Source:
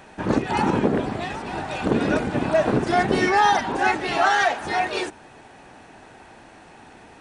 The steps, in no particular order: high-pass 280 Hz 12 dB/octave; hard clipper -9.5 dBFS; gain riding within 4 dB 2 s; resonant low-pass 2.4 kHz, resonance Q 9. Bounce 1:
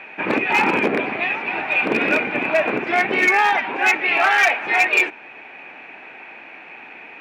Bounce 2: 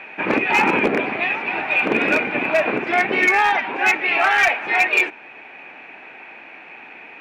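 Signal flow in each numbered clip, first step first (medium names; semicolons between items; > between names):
gain riding > resonant low-pass > hard clipper > high-pass; high-pass > gain riding > resonant low-pass > hard clipper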